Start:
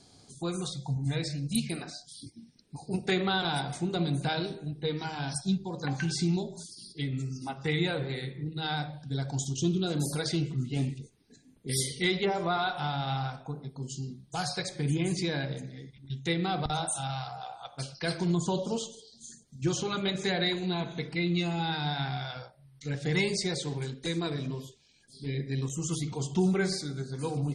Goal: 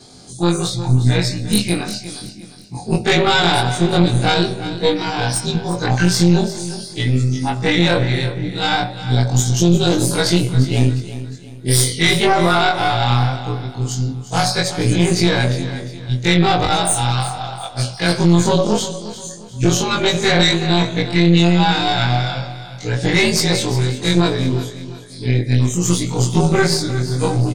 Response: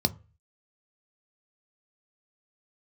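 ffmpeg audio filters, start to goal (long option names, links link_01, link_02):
-filter_complex "[0:a]afftfilt=real='re':imag='-im':win_size=2048:overlap=0.75,apsyclip=26.5dB,aeval=exprs='1.12*(cos(1*acos(clip(val(0)/1.12,-1,1)))-cos(1*PI/2))+0.355*(cos(2*acos(clip(val(0)/1.12,-1,1)))-cos(2*PI/2))':channel_layout=same,asplit=2[link_01][link_02];[link_02]aecho=0:1:354|708|1062|1416:0.211|0.0782|0.0289|0.0107[link_03];[link_01][link_03]amix=inputs=2:normalize=0,volume=-7.5dB"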